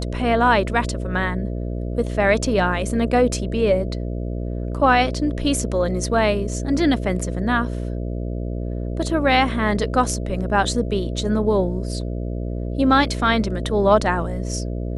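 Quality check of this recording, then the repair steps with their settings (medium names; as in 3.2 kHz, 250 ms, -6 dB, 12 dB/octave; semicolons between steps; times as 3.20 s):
buzz 60 Hz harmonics 11 -26 dBFS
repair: de-hum 60 Hz, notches 11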